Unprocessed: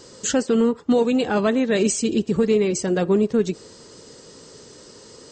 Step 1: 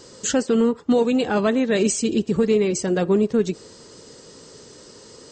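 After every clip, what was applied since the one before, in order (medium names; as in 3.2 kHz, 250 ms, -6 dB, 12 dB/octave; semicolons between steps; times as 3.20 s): no audible change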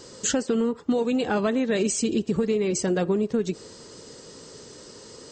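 compression, threshold -20 dBFS, peak gain reduction 6.5 dB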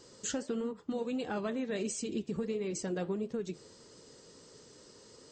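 flange 1.5 Hz, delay 5.7 ms, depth 5.9 ms, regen -76%; trim -7 dB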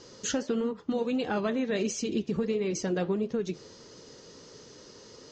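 elliptic low-pass 6.5 kHz, stop band 50 dB; trim +7 dB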